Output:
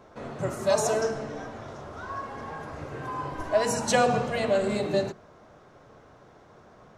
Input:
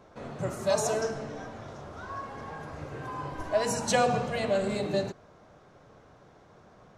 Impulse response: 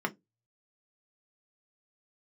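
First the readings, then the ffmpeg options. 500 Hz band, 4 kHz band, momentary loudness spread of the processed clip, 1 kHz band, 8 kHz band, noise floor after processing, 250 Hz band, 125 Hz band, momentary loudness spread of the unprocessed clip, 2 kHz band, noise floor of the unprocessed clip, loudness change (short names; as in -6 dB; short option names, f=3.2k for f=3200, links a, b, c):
+3.0 dB, +1.5 dB, 16 LU, +2.5 dB, +2.0 dB, -54 dBFS, +2.5 dB, +1.0 dB, 16 LU, +3.0 dB, -57 dBFS, +2.5 dB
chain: -filter_complex "[0:a]asplit=2[a][b];[1:a]atrim=start_sample=2205[c];[b][c]afir=irnorm=-1:irlink=0,volume=-19.5dB[d];[a][d]amix=inputs=2:normalize=0,volume=1.5dB"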